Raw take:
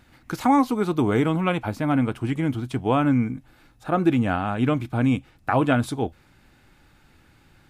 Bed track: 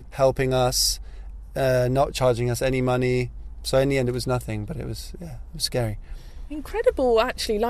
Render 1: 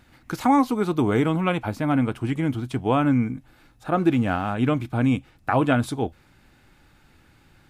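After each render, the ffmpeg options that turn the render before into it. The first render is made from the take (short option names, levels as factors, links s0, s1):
-filter_complex "[0:a]asettb=1/sr,asplit=3[s0][s1][s2];[s0]atrim=end=3.974[s3];[s1]atrim=start=3.97:end=4.53,asetpts=PTS-STARTPTS,afade=t=in:d=0.004:c=qsin,afade=t=out:st=0.556:d=0.004:c=qsin,aeval=exprs='sgn(val(0))*max(abs(val(0))-0.00316,0)':c=same[s4];[s2]atrim=start=4.526[s5];[s3][s4]acrossfade=d=0.004:c1=hsin:c2=qsin[s6];[s6][s5]acrossfade=d=0.004:c1=qsin:c2=hsin"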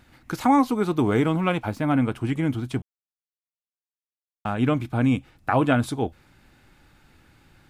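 -filter_complex "[0:a]asettb=1/sr,asplit=3[s0][s1][s2];[s0]atrim=end=0.874[s3];[s1]atrim=start=0.87:end=1.8,asetpts=PTS-STARTPTS,afade=t=in:d=0.004:c=qsin,afade=t=out:st=0.926:d=0.004:c=qsin,aeval=exprs='sgn(val(0))*max(abs(val(0))-0.00211,0)':c=same[s4];[s2]atrim=start=1.796[s5];[s3][s4]acrossfade=d=0.004:c1=hsin:c2=qsin[s6];[s6][s5]acrossfade=d=0.004:c1=qsin:c2=hsin,asplit=3[s7][s8][s9];[s7]atrim=end=2.82,asetpts=PTS-STARTPTS,afade=t=out:st=2.816:d=0.004:c=hsin[s10];[s8]atrim=start=2.82:end=4.45,asetpts=PTS-STARTPTS,volume=0[s11];[s9]atrim=start=4.45,asetpts=PTS-STARTPTS,afade=t=in:d=0.004:c=hsin[s12];[s10][s11][s12]concat=n=3:v=0:a=1"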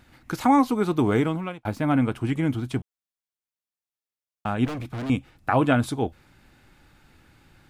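-filter_complex "[0:a]asettb=1/sr,asplit=3[s0][s1][s2];[s0]atrim=end=4.654[s3];[s1]atrim=start=4.65:end=5.1,asetpts=PTS-STARTPTS,afade=t=in:d=0.004:c=qsin,afade=t=out:st=0.446:d=0.004:c=qsin,volume=29.9,asoftclip=hard,volume=0.0335[s4];[s2]atrim=start=5.096[s5];[s3][s4]acrossfade=d=0.004:c1=hsin:c2=qsin[s6];[s6][s5]acrossfade=d=0.004:c1=qsin:c2=hsin,asplit=2[s7][s8];[s7]atrim=end=1.65,asetpts=PTS-STARTPTS,afade=t=out:st=1.15:d=0.5[s9];[s8]atrim=start=1.65,asetpts=PTS-STARTPTS,afade=t=in:d=0.004:c=hsin[s10];[s9][s10]concat=n=2:v=0:a=1"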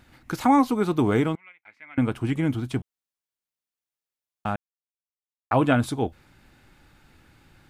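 -filter_complex "[0:a]asettb=1/sr,asplit=3[s0][s1][s2];[s0]atrim=end=1.354[s3];[s1]atrim=start=1.35:end=1.98,asetpts=PTS-STARTPTS,afade=t=in:d=0.004:c=qsin,afade=t=out:st=0.626:d=0.004:c=qsin,bandpass=f=2100:t=q:w=9.1[s4];[s2]atrim=start=1.976[s5];[s3][s4]acrossfade=d=0.004:c1=hsin:c2=qsin[s6];[s6][s5]acrossfade=d=0.004:c1=qsin:c2=hsin,asplit=3[s7][s8][s9];[s7]atrim=end=4.56,asetpts=PTS-STARTPTS,afade=t=out:st=4.556:d=0.004:c=hsin[s10];[s8]atrim=start=4.56:end=5.51,asetpts=PTS-STARTPTS,volume=0[s11];[s9]atrim=start=5.51,asetpts=PTS-STARTPTS,afade=t=in:d=0.004:c=hsin[s12];[s10][s11][s12]concat=n=3:v=0:a=1"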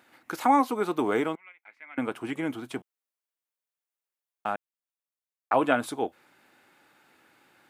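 -af "highpass=380,equalizer=f=4900:w=0.82:g=-4.5"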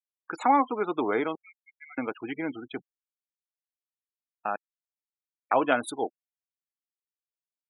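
-af "afftfilt=real='re*gte(hypot(re,im),0.0178)':imag='im*gte(hypot(re,im),0.0178)':win_size=1024:overlap=0.75,bass=f=250:g=-6,treble=f=4000:g=7"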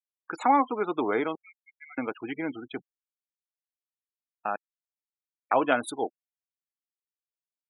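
-af anull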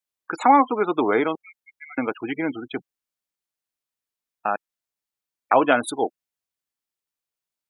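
-af "volume=2.11,alimiter=limit=0.708:level=0:latency=1"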